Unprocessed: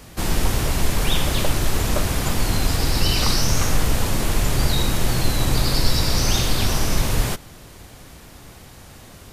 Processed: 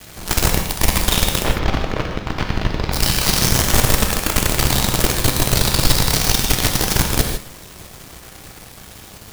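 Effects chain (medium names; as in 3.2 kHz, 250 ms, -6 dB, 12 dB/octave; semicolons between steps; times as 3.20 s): companded quantiser 2-bit; 1.42–2.92 s: distance through air 250 m; gated-style reverb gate 180 ms flat, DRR 2.5 dB; trim -7 dB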